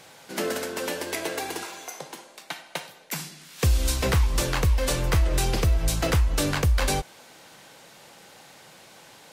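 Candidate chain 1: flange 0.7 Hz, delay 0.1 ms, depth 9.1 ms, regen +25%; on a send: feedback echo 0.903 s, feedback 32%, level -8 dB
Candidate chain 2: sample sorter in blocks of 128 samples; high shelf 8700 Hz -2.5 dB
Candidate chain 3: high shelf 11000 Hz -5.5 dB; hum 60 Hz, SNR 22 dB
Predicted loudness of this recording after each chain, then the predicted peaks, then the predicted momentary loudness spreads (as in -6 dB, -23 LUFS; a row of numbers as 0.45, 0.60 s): -30.0, -25.5, -26.0 LUFS; -13.0, -12.5, -12.5 dBFS; 19, 16, 15 LU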